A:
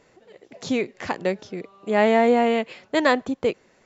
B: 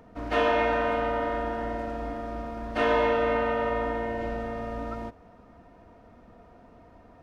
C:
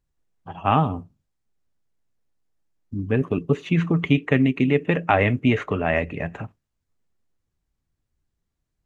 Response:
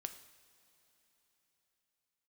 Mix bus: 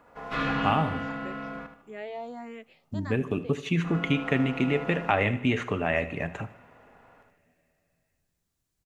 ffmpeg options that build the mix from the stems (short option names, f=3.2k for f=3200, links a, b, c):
-filter_complex "[0:a]asplit=2[a][b];[b]afreqshift=1.5[c];[a][c]amix=inputs=2:normalize=1,volume=-18.5dB,asplit=3[d][e][f];[e]volume=-14dB[g];[1:a]aeval=exprs='val(0)*sin(2*PI*740*n/s)':c=same,volume=-2.5dB,asplit=3[h][i][j];[h]atrim=end=1.59,asetpts=PTS-STARTPTS,afade=t=out:st=1.586:d=0.004:c=hsin[k];[i]atrim=start=1.59:end=3.84,asetpts=PTS-STARTPTS,volume=0[l];[j]atrim=start=3.84,asetpts=PTS-STARTPTS,afade=t=in:d=0.004:c=hsin[m];[k][l][m]concat=n=3:v=0:a=1,asplit=2[n][o];[o]volume=-4.5dB[p];[2:a]highshelf=f=4.3k:g=10.5,volume=-3.5dB,asplit=3[q][r][s];[r]volume=-5.5dB[t];[s]volume=-17.5dB[u];[f]apad=whole_len=318609[v];[n][v]sidechaincompress=threshold=-47dB:ratio=8:attack=16:release=1450[w];[d][q]amix=inputs=2:normalize=0,acompressor=threshold=-32dB:ratio=2,volume=0dB[x];[3:a]atrim=start_sample=2205[y];[g][t]amix=inputs=2:normalize=0[z];[z][y]afir=irnorm=-1:irlink=0[aa];[p][u]amix=inputs=2:normalize=0,aecho=0:1:76|152|228|304|380:1|0.37|0.137|0.0507|0.0187[ab];[w][x][aa][ab]amix=inputs=4:normalize=0,lowshelf=f=78:g=-5.5"